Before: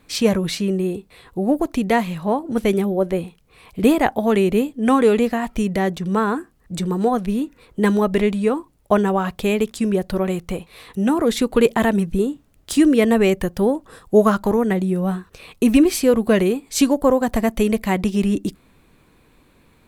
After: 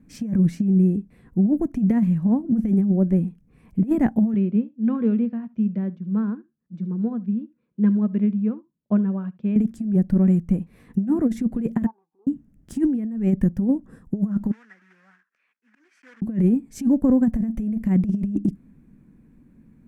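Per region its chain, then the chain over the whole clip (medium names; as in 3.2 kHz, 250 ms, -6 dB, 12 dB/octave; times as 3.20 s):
4.34–9.56 s: cabinet simulation 220–4100 Hz, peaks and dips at 270 Hz -9 dB, 420 Hz -4 dB, 780 Hz -8 dB, 1.9 kHz -9 dB + delay 71 ms -16.5 dB + upward expansion, over -40 dBFS
11.86–12.27 s: Butterworth band-pass 940 Hz, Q 4.4 + comb 2.5 ms, depth 81% + tape noise reduction on one side only decoder only
14.51–16.22 s: block-companded coder 3-bit + slow attack 249 ms + ladder band-pass 1.9 kHz, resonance 40%
whole clip: FFT filter 100 Hz 0 dB, 220 Hz +11 dB, 410 Hz -8 dB, 1.2 kHz -16 dB, 1.7 kHz -10 dB, 3.9 kHz -27 dB, 5.9 kHz -17 dB; compressor with a negative ratio -14 dBFS, ratio -0.5; peaking EQ 5.5 kHz +2 dB 0.23 oct; trim -3.5 dB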